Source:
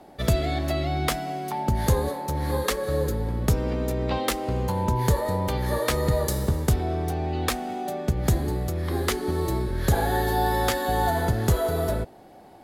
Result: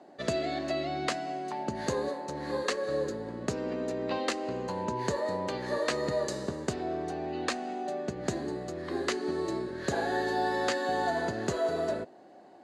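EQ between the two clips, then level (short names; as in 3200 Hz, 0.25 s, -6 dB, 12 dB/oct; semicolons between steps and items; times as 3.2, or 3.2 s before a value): dynamic EQ 2500 Hz, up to +4 dB, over -49 dBFS, Q 3.4; dynamic EQ 5000 Hz, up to +3 dB, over -45 dBFS, Q 1.5; speaker cabinet 310–6500 Hz, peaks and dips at 470 Hz -5 dB, 850 Hz -8 dB, 1300 Hz -6 dB, 2300 Hz -9 dB, 3400 Hz -10 dB, 5400 Hz -10 dB; 0.0 dB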